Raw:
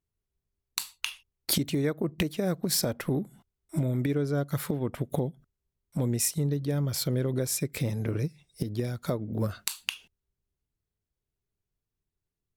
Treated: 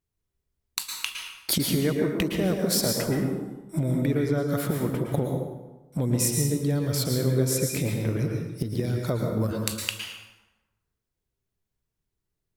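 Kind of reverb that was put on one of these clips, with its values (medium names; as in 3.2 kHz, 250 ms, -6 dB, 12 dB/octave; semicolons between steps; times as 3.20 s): plate-style reverb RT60 1.1 s, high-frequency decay 0.65×, pre-delay 100 ms, DRR 1 dB; trim +1.5 dB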